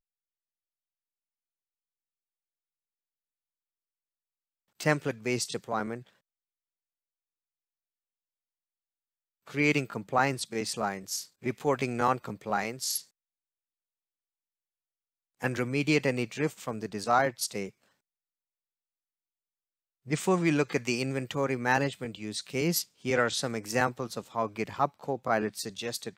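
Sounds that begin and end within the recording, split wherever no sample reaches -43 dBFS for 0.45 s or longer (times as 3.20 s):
4.80–6.01 s
9.47–13.01 s
15.41–17.69 s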